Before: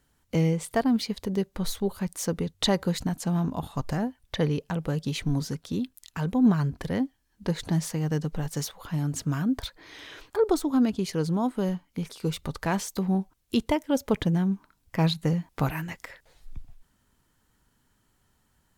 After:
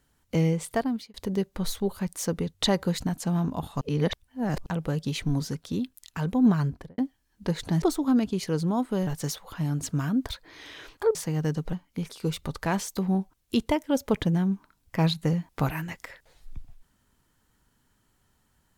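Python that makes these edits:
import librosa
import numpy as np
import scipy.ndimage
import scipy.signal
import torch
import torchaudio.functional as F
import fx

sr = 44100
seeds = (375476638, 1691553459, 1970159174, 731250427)

y = fx.studio_fade_out(x, sr, start_s=6.66, length_s=0.32)
y = fx.edit(y, sr, fx.fade_out_span(start_s=0.71, length_s=0.43),
    fx.reverse_span(start_s=3.81, length_s=0.85),
    fx.swap(start_s=7.82, length_s=0.58, other_s=10.48, other_length_s=1.25), tone=tone)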